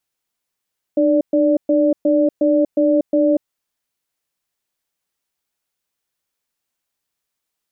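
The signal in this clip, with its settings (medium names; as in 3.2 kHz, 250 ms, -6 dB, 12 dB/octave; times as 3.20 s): cadence 302 Hz, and 583 Hz, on 0.24 s, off 0.12 s, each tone -14.5 dBFS 2.48 s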